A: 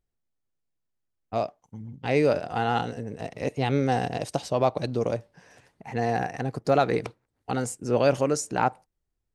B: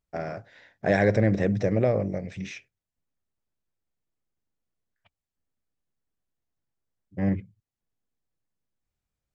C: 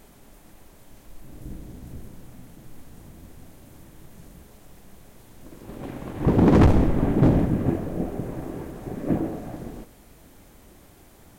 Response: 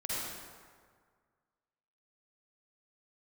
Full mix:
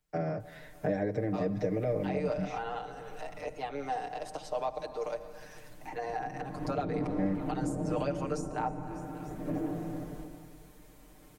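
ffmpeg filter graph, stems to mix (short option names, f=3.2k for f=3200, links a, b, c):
-filter_complex "[0:a]highpass=940,volume=-0.5dB,asplit=4[a][b][c][d];[b]volume=-18dB[e];[c]volume=-23dB[f];[1:a]acompressor=threshold=-25dB:ratio=2,volume=0dB,asplit=2[g][h];[h]volume=-23dB[i];[2:a]alimiter=limit=-17.5dB:level=0:latency=1,adelay=400,volume=-12dB,asplit=2[j][k];[k]volume=-6dB[l];[d]apad=whole_len=519863[m];[j][m]sidechaincompress=threshold=-35dB:ratio=8:attack=16:release=836[n];[3:a]atrim=start_sample=2205[o];[e][l]amix=inputs=2:normalize=0[p];[p][o]afir=irnorm=-1:irlink=0[q];[f][i]amix=inputs=2:normalize=0,aecho=0:1:295|590|885|1180|1475|1770|2065:1|0.51|0.26|0.133|0.0677|0.0345|0.0176[r];[a][g][n][q][r]amix=inputs=5:normalize=0,acrossover=split=170|550|1100[s][t][u][v];[s]acompressor=threshold=-44dB:ratio=4[w];[t]acompressor=threshold=-33dB:ratio=4[x];[u]acompressor=threshold=-43dB:ratio=4[y];[v]acompressor=threshold=-54dB:ratio=4[z];[w][x][y][z]amix=inputs=4:normalize=0,aecho=1:1:6.6:0.98"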